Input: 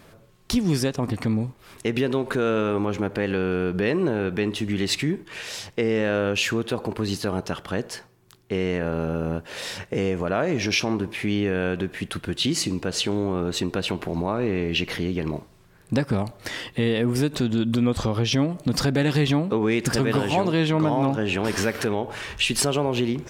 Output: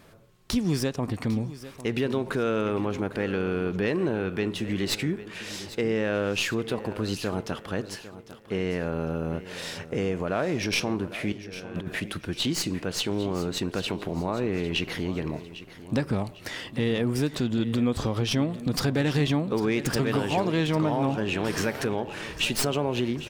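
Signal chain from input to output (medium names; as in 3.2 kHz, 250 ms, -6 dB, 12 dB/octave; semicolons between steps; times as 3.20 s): tracing distortion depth 0.048 ms; 11.32–12.00 s: compressor with a negative ratio -31 dBFS, ratio -0.5; feedback delay 801 ms, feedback 39%, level -15 dB; trim -3.5 dB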